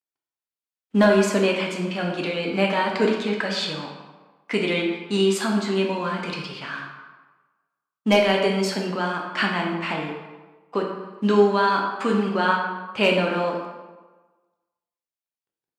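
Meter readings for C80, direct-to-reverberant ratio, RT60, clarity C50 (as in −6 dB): 5.5 dB, −0.5 dB, 1.3 s, 3.5 dB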